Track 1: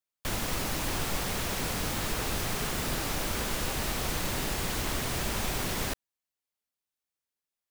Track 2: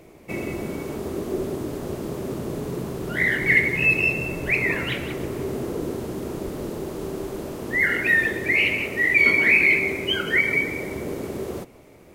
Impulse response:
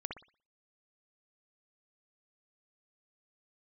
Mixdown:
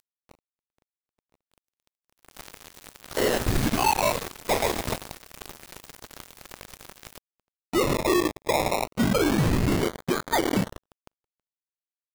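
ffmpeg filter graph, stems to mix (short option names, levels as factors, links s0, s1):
-filter_complex "[0:a]adelay=1250,volume=0.668,afade=t=in:st=2.11:d=0.32:silence=0.237137[s0];[1:a]highpass=770,alimiter=limit=0.158:level=0:latency=1:release=41,acrusher=samples=23:mix=1:aa=0.000001:lfo=1:lforange=13.8:lforate=0.27,volume=1[s1];[s0][s1]amix=inputs=2:normalize=0,acompressor=mode=upward:threshold=0.0251:ratio=2.5,acrusher=bits=3:mix=0:aa=0.5"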